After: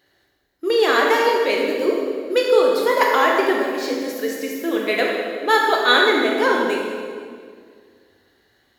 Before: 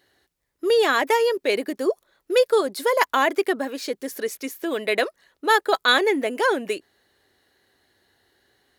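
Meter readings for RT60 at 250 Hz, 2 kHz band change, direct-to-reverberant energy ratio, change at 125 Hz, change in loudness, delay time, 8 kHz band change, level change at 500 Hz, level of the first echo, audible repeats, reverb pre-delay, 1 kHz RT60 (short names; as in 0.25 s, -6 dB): 2.4 s, +4.0 dB, -2.0 dB, n/a, +4.0 dB, none, 0.0 dB, +3.5 dB, none, none, 15 ms, 1.8 s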